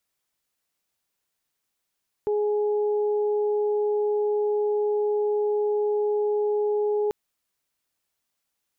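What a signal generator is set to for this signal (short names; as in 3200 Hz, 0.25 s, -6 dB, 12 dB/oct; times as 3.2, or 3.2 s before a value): steady additive tone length 4.84 s, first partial 418 Hz, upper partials -14 dB, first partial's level -21 dB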